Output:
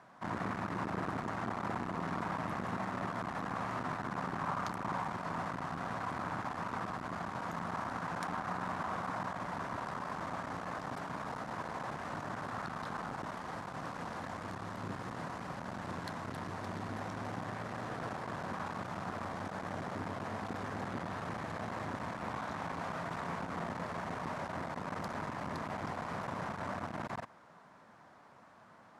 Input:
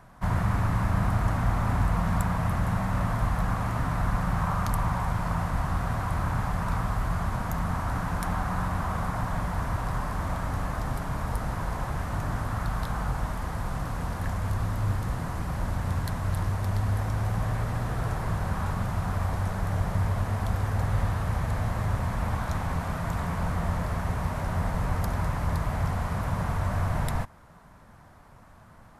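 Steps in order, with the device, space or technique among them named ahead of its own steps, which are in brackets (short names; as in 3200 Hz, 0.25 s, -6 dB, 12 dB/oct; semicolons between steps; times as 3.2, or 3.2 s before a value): public-address speaker with an overloaded transformer (core saturation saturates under 250 Hz; BPF 240–6200 Hz); gain -3 dB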